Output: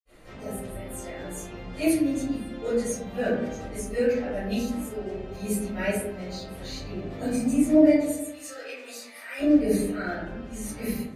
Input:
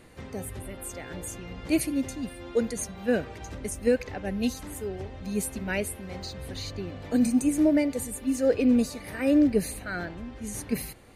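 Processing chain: 7.95–9.33 HPF 1300 Hz 12 dB/oct; reverb RT60 0.95 s, pre-delay 55 ms, DRR -60 dB; gain +7.5 dB

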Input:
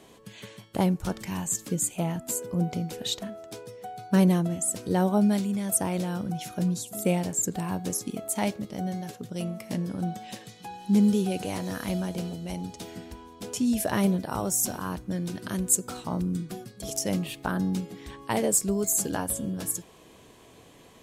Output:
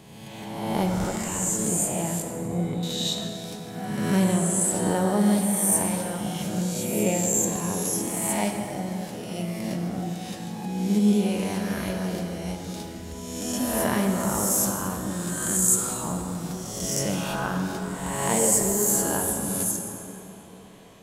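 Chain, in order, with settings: spectral swells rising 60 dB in 1.41 s; 2.22–2.83 LPF 1700 Hz 12 dB/oct; plate-style reverb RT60 3.5 s, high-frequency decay 0.5×, DRR 2.5 dB; gain -2.5 dB

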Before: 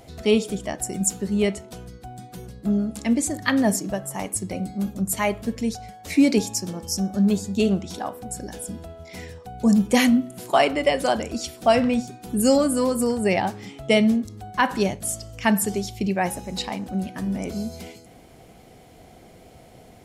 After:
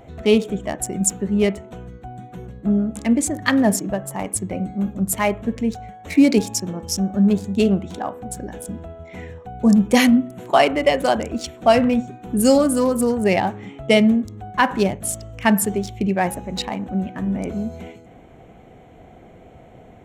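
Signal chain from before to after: Wiener smoothing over 9 samples; gain +3.5 dB

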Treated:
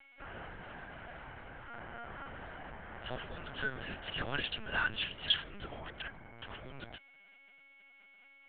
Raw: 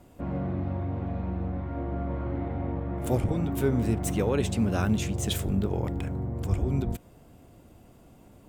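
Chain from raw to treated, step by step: whine 2200 Hz -49 dBFS; double band-pass 2200 Hz, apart 0.81 oct; LPC vocoder at 8 kHz pitch kept; gain +10.5 dB

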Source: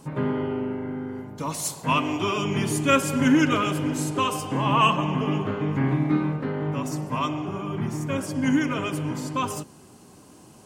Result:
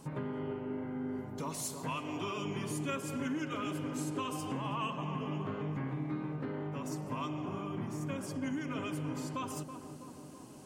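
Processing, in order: compressor 4:1, threshold -32 dBFS, peak gain reduction 15 dB; on a send: tape echo 0.327 s, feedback 77%, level -7 dB, low-pass 1100 Hz; on the sum: gain -4.5 dB

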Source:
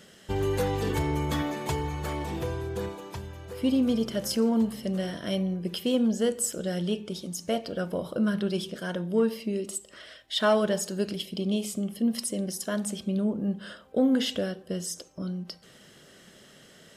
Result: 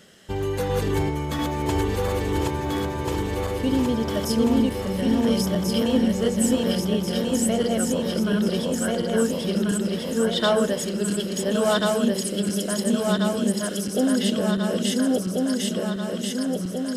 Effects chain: regenerating reverse delay 0.694 s, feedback 78%, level -0.5 dB; gain +1 dB

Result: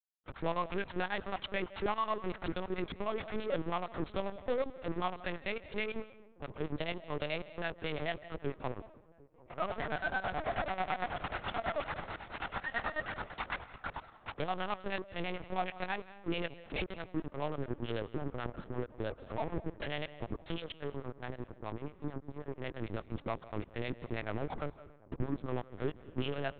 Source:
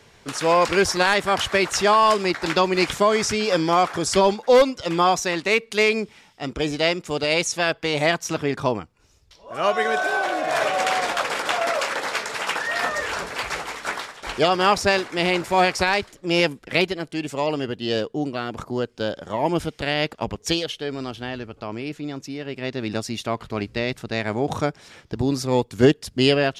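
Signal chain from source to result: Wiener smoothing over 15 samples; compressor 5:1, threshold -22 dBFS, peak gain reduction 11.5 dB; sample leveller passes 2; harmonic tremolo 9.2 Hz, depth 100%, crossover 450 Hz; soft clip -21.5 dBFS, distortion -12 dB; power-law curve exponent 3; dark delay 0.749 s, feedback 61%, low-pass 980 Hz, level -23.5 dB; on a send at -16 dB: reverb RT60 0.65 s, pre-delay 0.122 s; on the sum: LPC vocoder at 8 kHz pitch kept; gain -3.5 dB

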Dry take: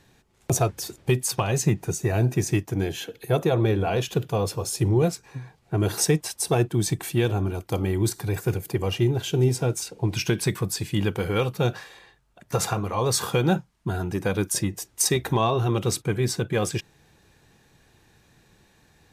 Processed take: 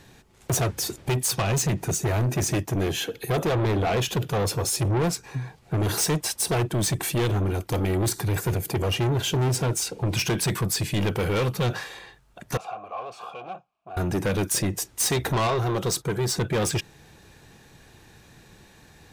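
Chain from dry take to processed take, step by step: 15.47–16.36 fifteen-band EQ 100 Hz -8 dB, 250 Hz -10 dB, 2500 Hz -9 dB, 10000 Hz -3 dB; soft clip -27.5 dBFS, distortion -6 dB; 12.57–13.97 vowel filter a; gain +7 dB

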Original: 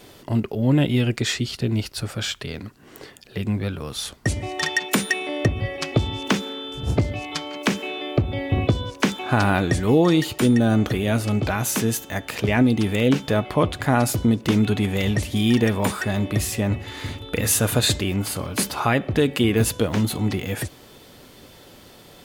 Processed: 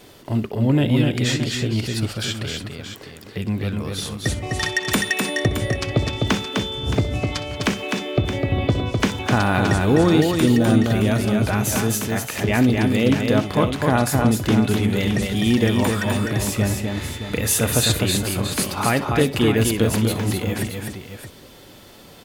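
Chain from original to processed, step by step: crackle 110/s -50 dBFS; tapped delay 63/254/307/620 ms -16.5/-4/-20/-10 dB

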